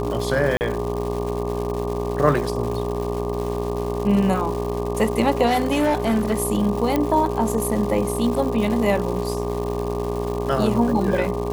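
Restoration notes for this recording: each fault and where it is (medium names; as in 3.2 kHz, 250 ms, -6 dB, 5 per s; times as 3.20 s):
buzz 60 Hz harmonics 20 -27 dBFS
crackle 330 per s -28 dBFS
whine 410 Hz -26 dBFS
0.57–0.61 s: dropout 39 ms
5.46–6.37 s: clipped -15.5 dBFS
6.96 s: pop -8 dBFS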